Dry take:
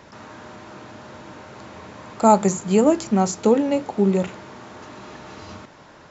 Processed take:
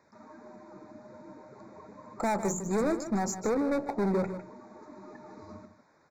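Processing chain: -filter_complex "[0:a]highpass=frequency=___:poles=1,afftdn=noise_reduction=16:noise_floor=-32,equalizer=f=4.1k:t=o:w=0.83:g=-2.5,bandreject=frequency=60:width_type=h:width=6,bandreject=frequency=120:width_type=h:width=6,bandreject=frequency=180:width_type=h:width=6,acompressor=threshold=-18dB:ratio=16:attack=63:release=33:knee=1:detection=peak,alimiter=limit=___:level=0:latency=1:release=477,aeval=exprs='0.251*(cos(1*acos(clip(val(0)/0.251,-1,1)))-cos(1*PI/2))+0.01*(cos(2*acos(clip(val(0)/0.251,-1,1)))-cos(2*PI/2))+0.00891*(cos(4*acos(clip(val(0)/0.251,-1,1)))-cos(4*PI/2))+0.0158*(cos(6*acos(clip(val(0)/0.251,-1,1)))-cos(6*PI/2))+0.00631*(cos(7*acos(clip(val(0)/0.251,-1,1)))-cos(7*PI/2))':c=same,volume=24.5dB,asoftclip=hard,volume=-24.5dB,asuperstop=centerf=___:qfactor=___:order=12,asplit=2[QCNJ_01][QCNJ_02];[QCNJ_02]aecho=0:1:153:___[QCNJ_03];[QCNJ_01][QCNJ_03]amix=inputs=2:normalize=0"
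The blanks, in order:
120, -12dB, 3000, 2.6, 0.266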